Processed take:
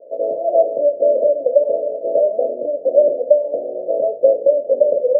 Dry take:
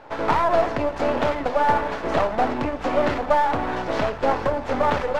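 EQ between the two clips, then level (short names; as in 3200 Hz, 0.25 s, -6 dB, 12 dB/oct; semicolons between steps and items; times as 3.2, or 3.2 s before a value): resonant high-pass 530 Hz, resonance Q 4.9; Chebyshev low-pass 670 Hz, order 8; -1.0 dB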